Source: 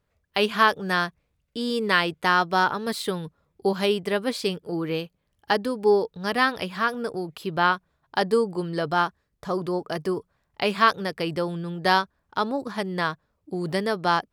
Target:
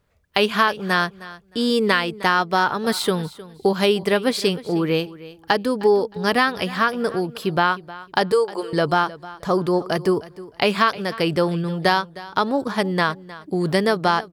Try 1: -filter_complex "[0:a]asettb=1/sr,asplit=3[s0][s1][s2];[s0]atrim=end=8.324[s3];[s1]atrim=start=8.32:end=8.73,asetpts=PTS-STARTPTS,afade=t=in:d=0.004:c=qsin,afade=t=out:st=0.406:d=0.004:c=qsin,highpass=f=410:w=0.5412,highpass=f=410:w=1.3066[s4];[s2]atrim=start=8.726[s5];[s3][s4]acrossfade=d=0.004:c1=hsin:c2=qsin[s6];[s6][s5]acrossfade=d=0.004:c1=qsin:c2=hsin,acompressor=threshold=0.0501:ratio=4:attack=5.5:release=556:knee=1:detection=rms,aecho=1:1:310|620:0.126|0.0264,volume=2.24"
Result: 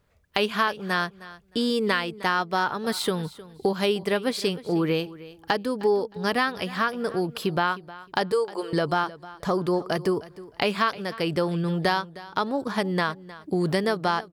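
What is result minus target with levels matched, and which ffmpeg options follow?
compression: peak gain reduction +5.5 dB
-filter_complex "[0:a]asettb=1/sr,asplit=3[s0][s1][s2];[s0]atrim=end=8.324[s3];[s1]atrim=start=8.32:end=8.73,asetpts=PTS-STARTPTS,afade=t=in:d=0.004:c=qsin,afade=t=out:st=0.406:d=0.004:c=qsin,highpass=f=410:w=0.5412,highpass=f=410:w=1.3066[s4];[s2]atrim=start=8.726[s5];[s3][s4]acrossfade=d=0.004:c1=hsin:c2=qsin[s6];[s6][s5]acrossfade=d=0.004:c1=qsin:c2=hsin,acompressor=threshold=0.119:ratio=4:attack=5.5:release=556:knee=1:detection=rms,aecho=1:1:310|620:0.126|0.0264,volume=2.24"

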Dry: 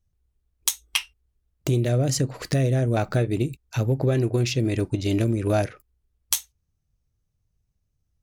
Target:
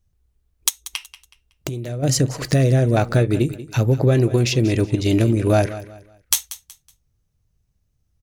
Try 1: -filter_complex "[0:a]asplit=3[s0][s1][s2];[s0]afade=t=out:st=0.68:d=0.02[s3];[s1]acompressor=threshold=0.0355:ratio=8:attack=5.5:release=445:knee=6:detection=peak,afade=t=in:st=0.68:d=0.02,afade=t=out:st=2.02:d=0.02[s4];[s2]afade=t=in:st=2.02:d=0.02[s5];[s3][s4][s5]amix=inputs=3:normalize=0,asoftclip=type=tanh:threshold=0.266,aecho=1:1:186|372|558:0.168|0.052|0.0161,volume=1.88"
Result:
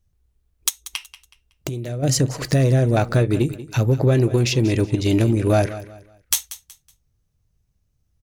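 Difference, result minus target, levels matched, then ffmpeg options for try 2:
saturation: distortion +13 dB
-filter_complex "[0:a]asplit=3[s0][s1][s2];[s0]afade=t=out:st=0.68:d=0.02[s3];[s1]acompressor=threshold=0.0355:ratio=8:attack=5.5:release=445:knee=6:detection=peak,afade=t=in:st=0.68:d=0.02,afade=t=out:st=2.02:d=0.02[s4];[s2]afade=t=in:st=2.02:d=0.02[s5];[s3][s4][s5]amix=inputs=3:normalize=0,asoftclip=type=tanh:threshold=0.668,aecho=1:1:186|372|558:0.168|0.052|0.0161,volume=1.88"

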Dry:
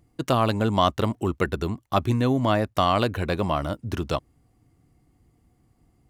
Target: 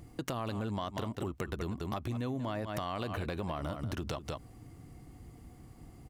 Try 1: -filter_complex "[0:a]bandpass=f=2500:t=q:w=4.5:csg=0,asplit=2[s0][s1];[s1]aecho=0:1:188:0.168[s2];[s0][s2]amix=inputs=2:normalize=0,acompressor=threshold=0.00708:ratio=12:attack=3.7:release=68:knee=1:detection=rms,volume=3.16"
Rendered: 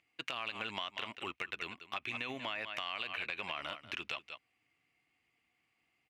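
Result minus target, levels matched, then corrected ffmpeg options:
2 kHz band +9.5 dB
-filter_complex "[0:a]asplit=2[s0][s1];[s1]aecho=0:1:188:0.168[s2];[s0][s2]amix=inputs=2:normalize=0,acompressor=threshold=0.00708:ratio=12:attack=3.7:release=68:knee=1:detection=rms,volume=3.16"

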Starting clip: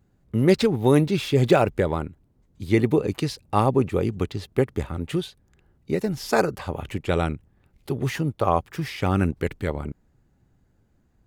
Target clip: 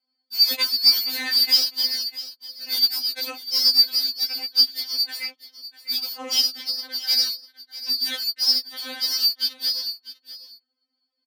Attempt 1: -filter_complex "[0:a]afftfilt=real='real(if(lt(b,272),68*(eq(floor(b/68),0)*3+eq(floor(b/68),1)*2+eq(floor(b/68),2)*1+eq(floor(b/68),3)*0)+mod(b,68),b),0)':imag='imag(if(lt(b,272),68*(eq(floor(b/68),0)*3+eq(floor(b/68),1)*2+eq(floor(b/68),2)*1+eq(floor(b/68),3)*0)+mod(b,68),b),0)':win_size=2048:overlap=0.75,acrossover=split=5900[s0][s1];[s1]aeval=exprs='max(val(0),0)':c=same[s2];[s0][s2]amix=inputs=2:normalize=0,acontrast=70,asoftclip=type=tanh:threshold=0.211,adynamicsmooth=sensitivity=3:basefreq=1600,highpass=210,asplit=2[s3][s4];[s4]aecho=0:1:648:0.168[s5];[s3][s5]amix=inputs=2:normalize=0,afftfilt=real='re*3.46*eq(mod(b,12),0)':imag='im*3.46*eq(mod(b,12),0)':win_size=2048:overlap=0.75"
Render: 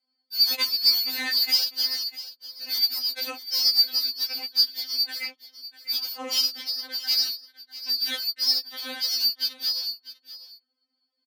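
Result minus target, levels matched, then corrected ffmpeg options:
saturation: distortion +12 dB
-filter_complex "[0:a]afftfilt=real='real(if(lt(b,272),68*(eq(floor(b/68),0)*3+eq(floor(b/68),1)*2+eq(floor(b/68),2)*1+eq(floor(b/68),3)*0)+mod(b,68),b),0)':imag='imag(if(lt(b,272),68*(eq(floor(b/68),0)*3+eq(floor(b/68),1)*2+eq(floor(b/68),2)*1+eq(floor(b/68),3)*0)+mod(b,68),b),0)':win_size=2048:overlap=0.75,acrossover=split=5900[s0][s1];[s1]aeval=exprs='max(val(0),0)':c=same[s2];[s0][s2]amix=inputs=2:normalize=0,acontrast=70,asoftclip=type=tanh:threshold=0.631,adynamicsmooth=sensitivity=3:basefreq=1600,highpass=210,asplit=2[s3][s4];[s4]aecho=0:1:648:0.168[s5];[s3][s5]amix=inputs=2:normalize=0,afftfilt=real='re*3.46*eq(mod(b,12),0)':imag='im*3.46*eq(mod(b,12),0)':win_size=2048:overlap=0.75"

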